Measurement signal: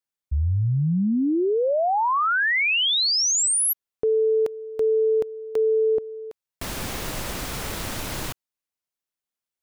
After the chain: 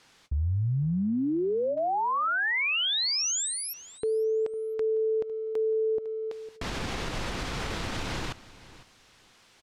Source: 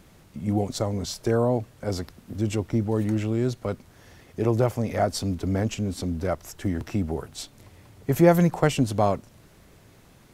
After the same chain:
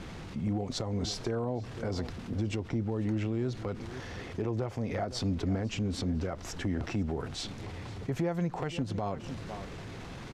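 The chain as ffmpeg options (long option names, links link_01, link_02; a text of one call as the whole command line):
ffmpeg -i in.wav -af "lowpass=5000,areverse,acompressor=mode=upward:threshold=-30dB:ratio=2.5:attack=0.33:release=30:knee=2.83:detection=peak,areverse,bandreject=frequency=600:width=13,aecho=1:1:504|1008:0.1|0.018,acompressor=threshold=-24dB:ratio=8:attack=0.1:release=199:knee=1:detection=rms" out.wav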